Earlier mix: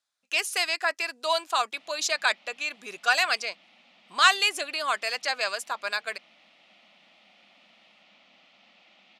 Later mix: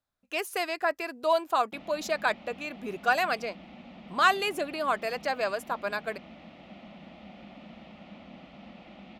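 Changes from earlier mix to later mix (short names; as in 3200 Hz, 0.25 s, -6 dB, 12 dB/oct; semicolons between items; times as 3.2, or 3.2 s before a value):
background +9.5 dB; master: remove weighting filter ITU-R 468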